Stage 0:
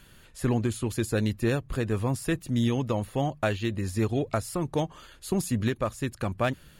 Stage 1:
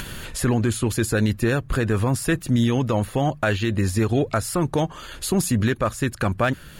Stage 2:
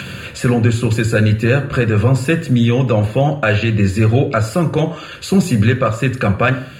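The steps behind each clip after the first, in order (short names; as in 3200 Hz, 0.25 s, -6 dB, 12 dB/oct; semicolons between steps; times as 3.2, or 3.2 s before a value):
dynamic EQ 1500 Hz, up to +6 dB, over -50 dBFS, Q 2.7; upward compressor, threshold -32 dBFS; limiter -19.5 dBFS, peak gain reduction 8 dB; gain +9 dB
reverb RT60 0.55 s, pre-delay 3 ms, DRR 6.5 dB; gain -2.5 dB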